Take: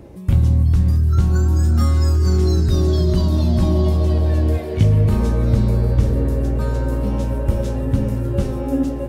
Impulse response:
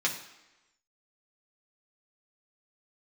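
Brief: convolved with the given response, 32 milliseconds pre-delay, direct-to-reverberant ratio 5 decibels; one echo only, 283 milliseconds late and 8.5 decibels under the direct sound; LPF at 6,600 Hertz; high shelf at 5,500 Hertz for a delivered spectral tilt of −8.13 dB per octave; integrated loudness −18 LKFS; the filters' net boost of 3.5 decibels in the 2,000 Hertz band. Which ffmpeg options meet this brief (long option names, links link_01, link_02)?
-filter_complex "[0:a]lowpass=6600,equalizer=frequency=2000:width_type=o:gain=4,highshelf=frequency=5500:gain=5.5,aecho=1:1:283:0.376,asplit=2[link_01][link_02];[1:a]atrim=start_sample=2205,adelay=32[link_03];[link_02][link_03]afir=irnorm=-1:irlink=0,volume=-13.5dB[link_04];[link_01][link_04]amix=inputs=2:normalize=0,volume=-1.5dB"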